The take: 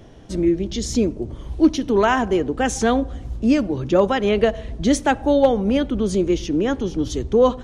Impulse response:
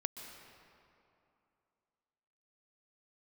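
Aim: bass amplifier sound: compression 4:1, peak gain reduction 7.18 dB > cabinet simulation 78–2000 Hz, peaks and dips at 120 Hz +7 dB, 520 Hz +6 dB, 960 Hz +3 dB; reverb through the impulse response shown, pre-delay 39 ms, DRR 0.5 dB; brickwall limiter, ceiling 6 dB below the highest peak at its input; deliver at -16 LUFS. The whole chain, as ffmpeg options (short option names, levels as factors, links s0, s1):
-filter_complex "[0:a]alimiter=limit=0.266:level=0:latency=1,asplit=2[s0][s1];[1:a]atrim=start_sample=2205,adelay=39[s2];[s1][s2]afir=irnorm=-1:irlink=0,volume=0.944[s3];[s0][s3]amix=inputs=2:normalize=0,acompressor=threshold=0.112:ratio=4,highpass=f=78:w=0.5412,highpass=f=78:w=1.3066,equalizer=f=120:t=q:w=4:g=7,equalizer=f=520:t=q:w=4:g=6,equalizer=f=960:t=q:w=4:g=3,lowpass=f=2000:w=0.5412,lowpass=f=2000:w=1.3066,volume=2"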